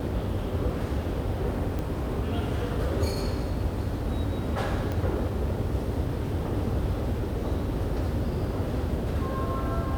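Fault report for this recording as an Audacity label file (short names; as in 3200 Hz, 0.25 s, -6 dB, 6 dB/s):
1.790000	1.790000	pop
4.920000	4.920000	pop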